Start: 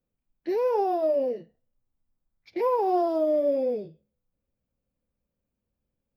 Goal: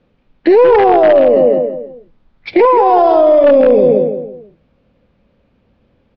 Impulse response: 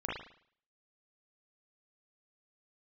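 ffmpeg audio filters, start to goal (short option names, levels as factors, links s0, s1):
-filter_complex "[0:a]asettb=1/sr,asplit=3[s0][s1][s2];[s0]atrim=end=2.654[s3];[s1]atrim=start=2.65:end=3.44,asetpts=PTS-STARTPTS,afade=t=in:d=0.004:c=qsin,afade=t=out:st=0.786:d=0.004:c=qsin,equalizer=f=290:w=0.71:g=-11.5[s4];[s2]atrim=start=3.436[s5];[s3][s4]acrossfade=d=0.004:c1=hsin:c2=qsin[s6];[s6][s5]acrossfade=d=0.004:c1=qsin:c2=hsin,asplit=2[s7][s8];[s8]adelay=166,lowpass=f=2200:p=1,volume=0.447,asplit=2[s9][s10];[s10]adelay=166,lowpass=f=2200:p=1,volume=0.36,asplit=2[s11][s12];[s12]adelay=166,lowpass=f=2200:p=1,volume=0.36,asplit=2[s13][s14];[s14]adelay=166,lowpass=f=2200:p=1,volume=0.36[s15];[s7][s9][s11][s13][s15]amix=inputs=5:normalize=0,aeval=exprs='0.119*(abs(mod(val(0)/0.119+3,4)-2)-1)':c=same,lowpass=f=3700:w=0.5412,lowpass=f=3700:w=1.3066,lowshelf=f=91:g=-8,aeval=exprs='0.133*(cos(1*acos(clip(val(0)/0.133,-1,1)))-cos(1*PI/2))+0.00668*(cos(2*acos(clip(val(0)/0.133,-1,1)))-cos(2*PI/2))':c=same,alimiter=level_in=29.9:limit=0.891:release=50:level=0:latency=1,volume=0.891"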